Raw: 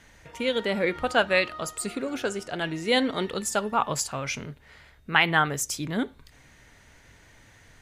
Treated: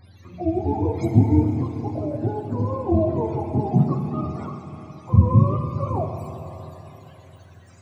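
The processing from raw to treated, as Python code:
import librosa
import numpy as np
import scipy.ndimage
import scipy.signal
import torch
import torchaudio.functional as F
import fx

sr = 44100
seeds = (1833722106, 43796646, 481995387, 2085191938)

y = fx.octave_mirror(x, sr, pivot_hz=410.0)
y = fx.rev_schroeder(y, sr, rt60_s=3.7, comb_ms=26, drr_db=4.5)
y = F.gain(torch.from_numpy(y), 4.5).numpy()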